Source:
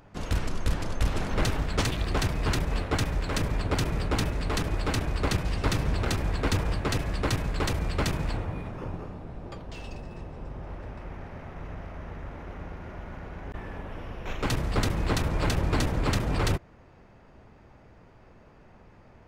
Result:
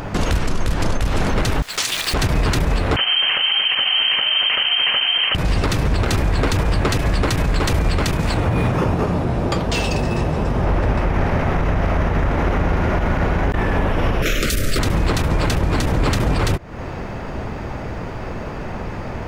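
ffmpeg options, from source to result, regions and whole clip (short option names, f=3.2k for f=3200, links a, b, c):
-filter_complex "[0:a]asettb=1/sr,asplit=3[a][b][c];[a]atrim=end=1.624[d];[b]atrim=start=1.62:end=2.14,asetpts=PTS-STARTPTS,afade=t=in:d=0.004:c=qsin,afade=t=out:st=0.516:d=0.004:c=qsin,bandpass=f=7.6k:t=q:w=0.57,acrusher=bits=9:dc=4:mix=0:aa=0.000001[e];[c]atrim=start=2.136[f];[d][e]acrossfade=d=0.004:c1=hsin:c2=qsin[g];[g][f]acrossfade=d=0.004:c1=qsin:c2=hsin,asettb=1/sr,asplit=3[h][i][j];[h]atrim=end=2.964[k];[i]atrim=start=2.96:end=5.35,asetpts=PTS-STARTPTS,afade=t=in:d=0.004:c=qsin,afade=t=out:st=2.386:d=0.004:c=qsin,highpass=f=57:p=1,lowpass=f=2.7k:t=q:w=0.5098,lowpass=f=2.7k:t=q:w=0.6013,lowpass=f=2.7k:t=q:w=0.9,lowpass=f=2.7k:t=q:w=2.563,afreqshift=-3200[l];[j]atrim=start=5.346[m];[k][l]acrossfade=d=0.004:c1=hsin:c2=qsin[n];[n][m]acrossfade=d=0.004:c1=qsin:c2=hsin,asettb=1/sr,asplit=3[o][p][q];[o]atrim=end=8.204[r];[p]atrim=start=8.2:end=10.64,asetpts=PTS-STARTPTS,afade=t=in:d=0.004:c=qsin,afade=t=out:st=2.436:d=0.004:c=qsin,highpass=47,highshelf=f=4.4k:g=5.5,flanger=delay=4.2:depth=4.6:regen=71:speed=1.3:shape=sinusoidal[s];[q]atrim=start=10.636[t];[r][s]acrossfade=d=0.004:c1=hsin:c2=qsin[u];[u][t]acrossfade=d=0.004:c1=qsin:c2=hsin,asettb=1/sr,asplit=3[v][w][x];[v]atrim=end=14.224[y];[w]atrim=start=14.22:end=14.79,asetpts=PTS-STARTPTS,afade=t=in:d=0.004:c=qsin,afade=t=out:st=0.566:d=0.004:c=qsin,asuperstop=centerf=950:order=8:qfactor=1.6,aemphasis=mode=production:type=75kf,afreqshift=-55[z];[x]atrim=start=14.786[aa];[y][z]acrossfade=d=0.004:c1=hsin:c2=qsin[ab];[ab][aa]acrossfade=d=0.004:c1=qsin:c2=hsin,acompressor=threshold=-37dB:ratio=12,alimiter=level_in=34.5dB:limit=-1dB:release=50:level=0:latency=1,volume=-8.5dB"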